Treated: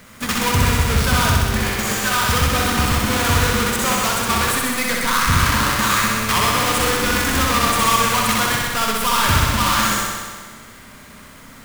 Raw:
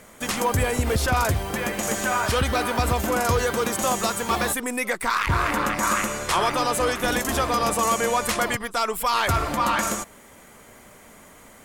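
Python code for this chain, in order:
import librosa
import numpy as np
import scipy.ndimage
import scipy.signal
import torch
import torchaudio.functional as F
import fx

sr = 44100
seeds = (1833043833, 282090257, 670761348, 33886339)

y = fx.halfwave_hold(x, sr)
y = fx.band_shelf(y, sr, hz=510.0, db=-8.0, octaves=1.7)
y = fx.room_flutter(y, sr, wall_m=10.9, rt60_s=1.5)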